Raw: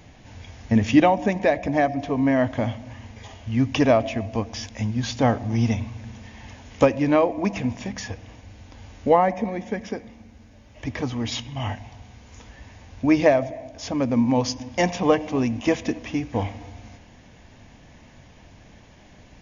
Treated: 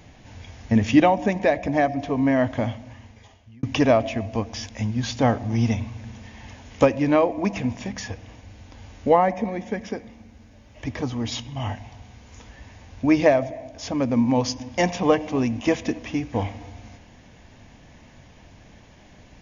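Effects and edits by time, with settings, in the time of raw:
0:02.60–0:03.63: fade out
0:10.94–0:11.75: parametric band 2,200 Hz −3.5 dB 1.2 octaves

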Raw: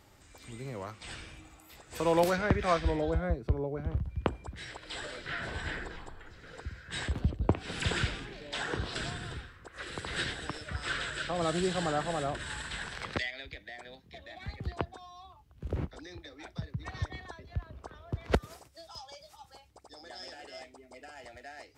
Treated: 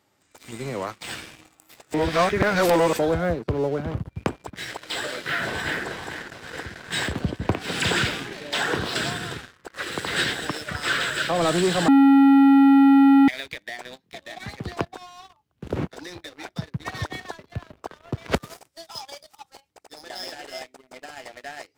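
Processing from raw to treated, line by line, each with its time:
0:01.94–0:02.99: reverse
0:05.43–0:05.86: delay throw 440 ms, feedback 75%, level −7.5 dB
0:11.88–0:13.28: beep over 275 Hz −12 dBFS
whole clip: high-pass filter 150 Hz 12 dB per octave; leveller curve on the samples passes 3

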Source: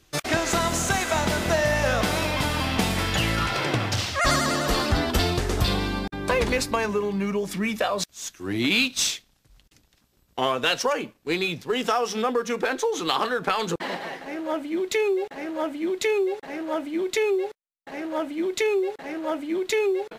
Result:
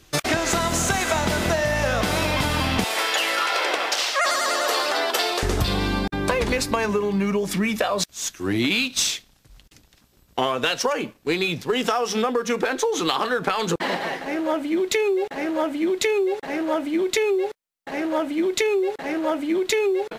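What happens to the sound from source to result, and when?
0:02.84–0:05.43: high-pass filter 440 Hz 24 dB per octave
whole clip: downward compressor, threshold −25 dBFS; level +6.5 dB

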